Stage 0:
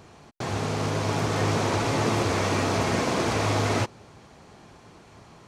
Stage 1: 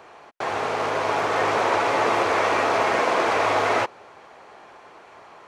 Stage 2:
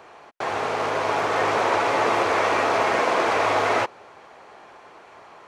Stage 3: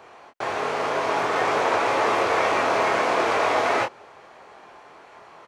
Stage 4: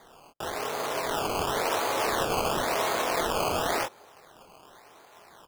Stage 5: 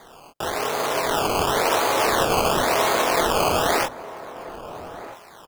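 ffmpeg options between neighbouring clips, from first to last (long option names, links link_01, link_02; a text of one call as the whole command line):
ffmpeg -i in.wav -filter_complex "[0:a]acrossover=split=420 2800:gain=0.0708 1 0.224[link_01][link_02][link_03];[link_01][link_02][link_03]amix=inputs=3:normalize=0,volume=8dB" out.wav
ffmpeg -i in.wav -af anull out.wav
ffmpeg -i in.wav -filter_complex "[0:a]asplit=2[link_01][link_02];[link_02]adelay=24,volume=-5.5dB[link_03];[link_01][link_03]amix=inputs=2:normalize=0,volume=-1.5dB" out.wav
ffmpeg -i in.wav -af "acrusher=samples=16:mix=1:aa=0.000001:lfo=1:lforange=16:lforate=0.94,volume=-6dB" out.wav
ffmpeg -i in.wav -filter_complex "[0:a]asplit=2[link_01][link_02];[link_02]adelay=1283,volume=-14dB,highshelf=frequency=4000:gain=-28.9[link_03];[link_01][link_03]amix=inputs=2:normalize=0,volume=7dB" out.wav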